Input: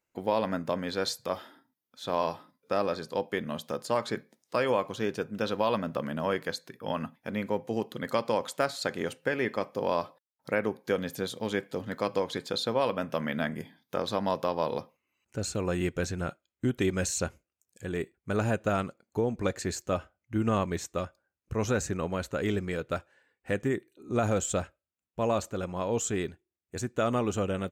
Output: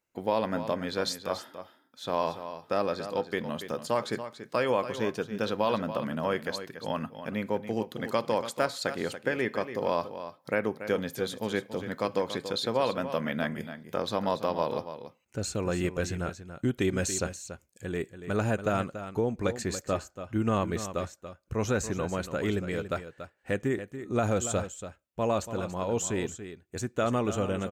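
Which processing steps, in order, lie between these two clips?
delay 284 ms -11 dB

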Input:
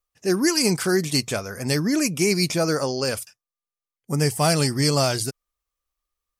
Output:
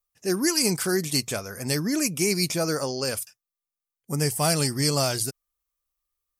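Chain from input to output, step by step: treble shelf 8.8 kHz +10 dB; trim -4 dB

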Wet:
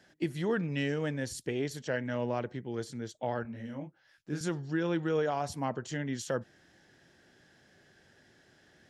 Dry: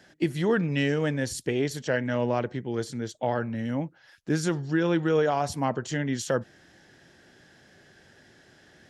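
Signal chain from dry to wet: 3.43–4.41 s: detune thickener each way 52 cents; trim -6.5 dB

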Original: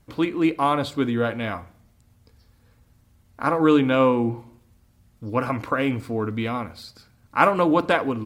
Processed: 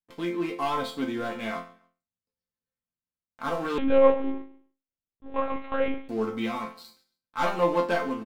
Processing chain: gate -48 dBFS, range -15 dB; bass shelf 89 Hz -11 dB; waveshaping leveller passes 3; level rider gain up to 4 dB; chord resonator F3 major, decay 0.33 s; feedback delay 138 ms, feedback 30%, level -22 dB; 3.78–6.09 s: monotone LPC vocoder at 8 kHz 270 Hz

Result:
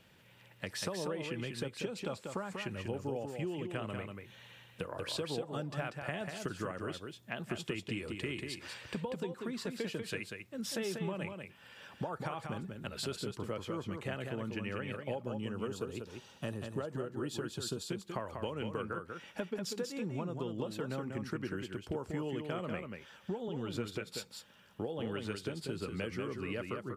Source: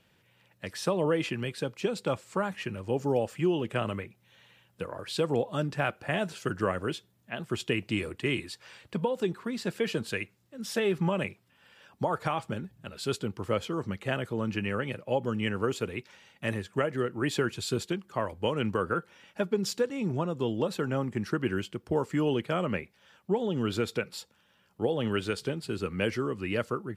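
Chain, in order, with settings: 15.26–17.86 s: peaking EQ 2.1 kHz -15 dB 0.52 oct; compression 5:1, threshold -40 dBFS, peak gain reduction 16 dB; delay 191 ms -5.5 dB; trim +3 dB

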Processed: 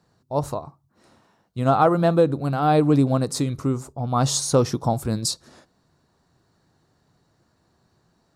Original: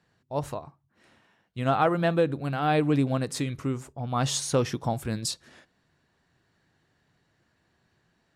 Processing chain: high-order bell 2.3 kHz -9.5 dB 1.3 oct; trim +6 dB

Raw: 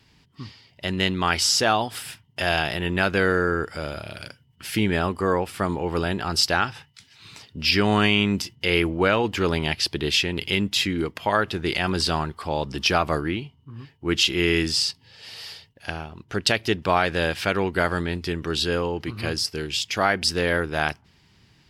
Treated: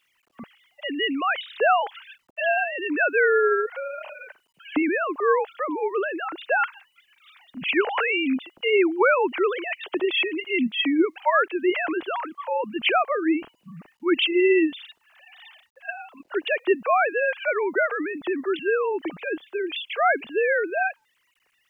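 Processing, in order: formants replaced by sine waves; word length cut 12-bit, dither none

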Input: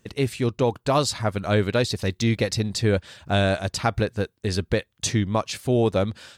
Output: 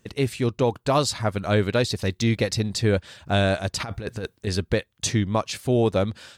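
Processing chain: 3.80–4.47 s: compressor with a negative ratio -30 dBFS, ratio -1

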